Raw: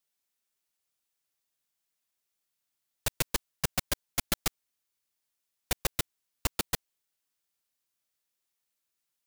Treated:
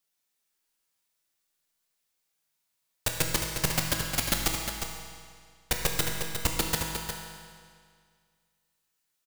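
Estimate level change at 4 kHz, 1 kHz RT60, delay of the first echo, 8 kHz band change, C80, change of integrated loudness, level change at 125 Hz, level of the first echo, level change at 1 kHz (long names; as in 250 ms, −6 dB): +5.0 dB, 2.0 s, 357 ms, +4.5 dB, 2.0 dB, +4.0 dB, +5.5 dB, −7.0 dB, +5.0 dB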